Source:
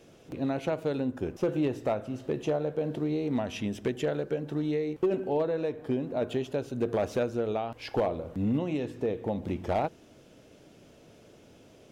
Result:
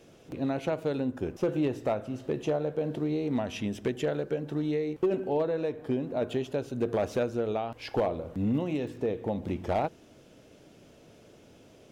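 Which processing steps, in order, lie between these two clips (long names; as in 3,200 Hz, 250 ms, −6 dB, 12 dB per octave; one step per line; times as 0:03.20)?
0:08.53–0:08.97: surface crackle 88 per second −47 dBFS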